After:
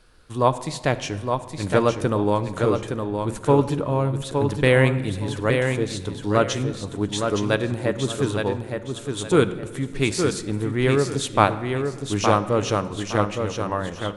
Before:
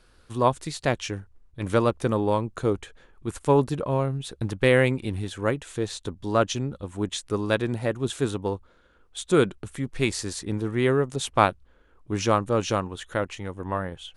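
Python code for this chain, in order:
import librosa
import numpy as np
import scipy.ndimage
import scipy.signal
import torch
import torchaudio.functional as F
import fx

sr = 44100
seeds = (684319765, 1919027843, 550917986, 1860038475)

y = fx.echo_feedback(x, sr, ms=865, feedback_pct=26, wet_db=-5.5)
y = fx.room_shoebox(y, sr, seeds[0], volume_m3=1800.0, walls='mixed', distance_m=0.45)
y = F.gain(torch.from_numpy(y), 2.0).numpy()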